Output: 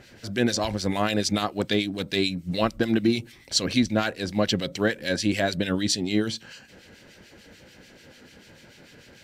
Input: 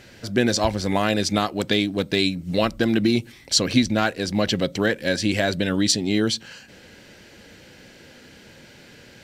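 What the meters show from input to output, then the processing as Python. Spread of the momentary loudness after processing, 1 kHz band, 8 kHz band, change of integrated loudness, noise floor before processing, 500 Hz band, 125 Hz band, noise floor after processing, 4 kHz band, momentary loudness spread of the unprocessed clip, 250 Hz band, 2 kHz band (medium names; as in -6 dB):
3 LU, -3.5 dB, -4.5 dB, -3.5 dB, -48 dBFS, -3.5 dB, -3.5 dB, -52 dBFS, -3.5 dB, 4 LU, -3.0 dB, -3.5 dB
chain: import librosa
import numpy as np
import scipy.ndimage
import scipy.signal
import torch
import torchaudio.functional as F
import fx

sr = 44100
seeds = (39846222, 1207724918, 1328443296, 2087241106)

y = fx.harmonic_tremolo(x, sr, hz=6.8, depth_pct=70, crossover_hz=1800.0)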